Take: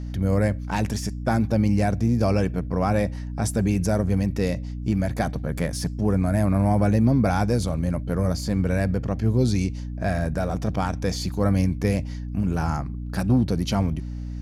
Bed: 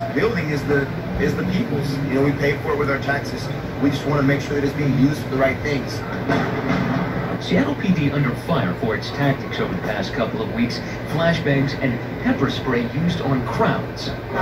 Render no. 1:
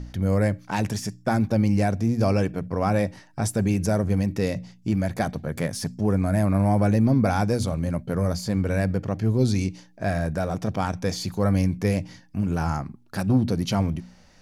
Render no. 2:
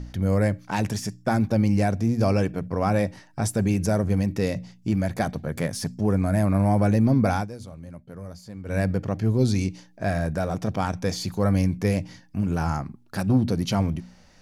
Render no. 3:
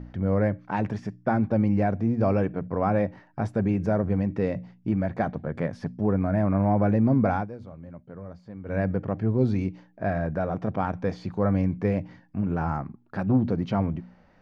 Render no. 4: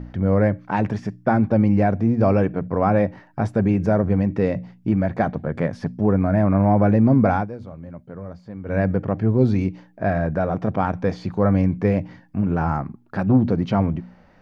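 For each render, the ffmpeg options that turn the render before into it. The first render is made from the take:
-af "bandreject=f=60:t=h:w=4,bandreject=f=120:t=h:w=4,bandreject=f=180:t=h:w=4,bandreject=f=240:t=h:w=4,bandreject=f=300:t=h:w=4"
-filter_complex "[0:a]asplit=3[a][b][c];[a]atrim=end=7.48,asetpts=PTS-STARTPTS,afade=t=out:st=7.34:d=0.14:silence=0.188365[d];[b]atrim=start=7.48:end=8.64,asetpts=PTS-STARTPTS,volume=-14.5dB[e];[c]atrim=start=8.64,asetpts=PTS-STARTPTS,afade=t=in:d=0.14:silence=0.188365[f];[d][e][f]concat=n=3:v=0:a=1"
-af "lowpass=1.7k,lowshelf=f=83:g=-9"
-af "volume=5.5dB"

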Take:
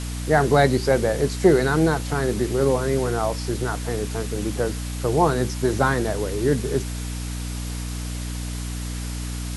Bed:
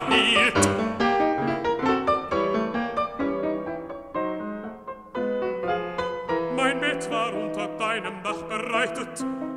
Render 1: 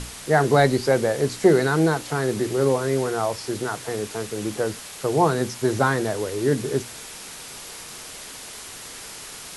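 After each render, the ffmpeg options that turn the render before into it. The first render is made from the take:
-af "bandreject=f=60:t=h:w=6,bandreject=f=120:t=h:w=6,bandreject=f=180:t=h:w=6,bandreject=f=240:t=h:w=6,bandreject=f=300:t=h:w=6"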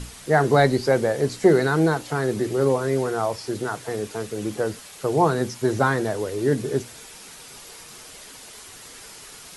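-af "afftdn=nr=6:nf=-39"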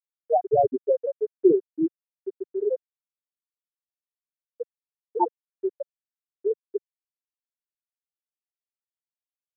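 -af "afftfilt=real='re*gte(hypot(re,im),1)':imag='im*gte(hypot(re,im),1)':win_size=1024:overlap=0.75,equalizer=f=160:t=o:w=0.67:g=-12,equalizer=f=1.6k:t=o:w=0.67:g=12,equalizer=f=4k:t=o:w=0.67:g=7"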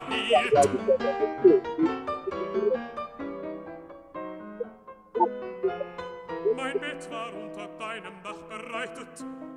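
-filter_complex "[1:a]volume=-9.5dB[a];[0:a][a]amix=inputs=2:normalize=0"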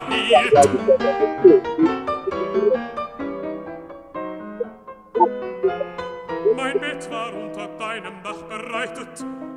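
-af "volume=7.5dB,alimiter=limit=-1dB:level=0:latency=1"

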